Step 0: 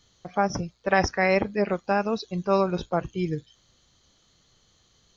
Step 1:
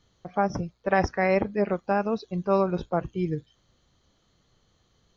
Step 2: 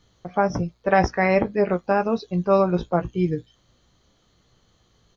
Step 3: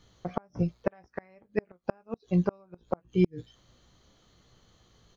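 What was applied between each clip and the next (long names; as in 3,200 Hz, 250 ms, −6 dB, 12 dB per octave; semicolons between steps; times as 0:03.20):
high-shelf EQ 2,700 Hz −11.5 dB
double-tracking delay 17 ms −9.5 dB; level +4 dB
gate with flip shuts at −12 dBFS, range −38 dB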